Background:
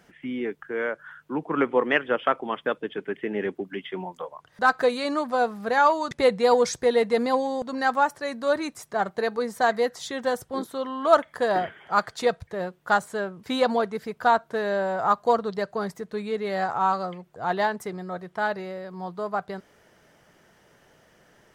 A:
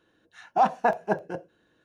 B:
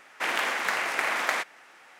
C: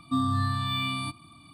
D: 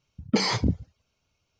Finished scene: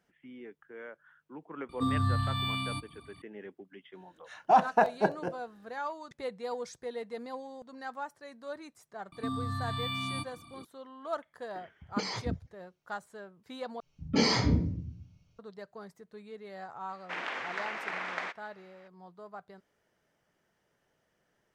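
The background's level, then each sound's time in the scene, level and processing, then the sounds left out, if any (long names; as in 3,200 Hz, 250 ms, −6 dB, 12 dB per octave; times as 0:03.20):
background −17.5 dB
0:01.69: mix in C −4 dB + parametric band 61 Hz +14 dB
0:03.93: mix in A −1 dB
0:09.12: mix in C −1.5 dB + downward compressor, threshold −29 dBFS
0:11.63: mix in D −11 dB
0:13.80: overwrite with D −12 dB + rectangular room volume 64 cubic metres, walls mixed, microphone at 2.3 metres
0:16.89: mix in B −8 dB + high-frequency loss of the air 150 metres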